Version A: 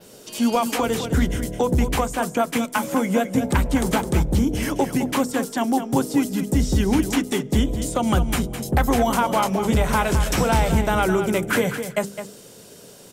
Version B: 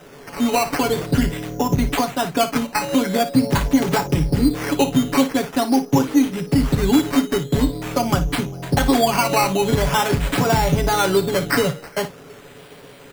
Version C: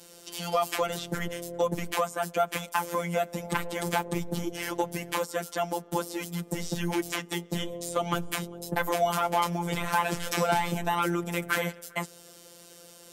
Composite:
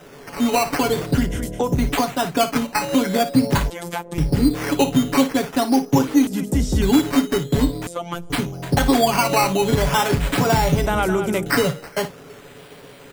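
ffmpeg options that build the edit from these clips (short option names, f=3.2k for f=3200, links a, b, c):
-filter_complex "[0:a]asplit=3[a][b][c];[2:a]asplit=2[d][e];[1:a]asplit=6[f][g][h][i][j][k];[f]atrim=end=1.36[l];[a]atrim=start=1.12:end=1.85[m];[g]atrim=start=1.61:end=3.702[n];[d]atrim=start=3.698:end=4.182[o];[h]atrim=start=4.178:end=6.272[p];[b]atrim=start=6.268:end=6.822[q];[i]atrim=start=6.818:end=7.872[r];[e]atrim=start=7.868:end=8.302[s];[j]atrim=start=8.298:end=10.862[t];[c]atrim=start=10.858:end=11.462[u];[k]atrim=start=11.458[v];[l][m]acrossfade=d=0.24:c1=tri:c2=tri[w];[w][n]acrossfade=d=0.24:c1=tri:c2=tri[x];[x][o]acrossfade=d=0.004:c1=hsin:c2=hsin[y];[y][p]acrossfade=d=0.004:c1=hsin:c2=hsin[z];[z][q]acrossfade=d=0.004:c1=hsin:c2=hsin[aa];[aa][r]acrossfade=d=0.004:c1=hsin:c2=hsin[ab];[ab][s]acrossfade=d=0.004:c1=hsin:c2=hsin[ac];[ac][t]acrossfade=d=0.004:c1=hsin:c2=hsin[ad];[ad][u]acrossfade=d=0.004:c1=hsin:c2=hsin[ae];[ae][v]acrossfade=d=0.004:c1=hsin:c2=hsin"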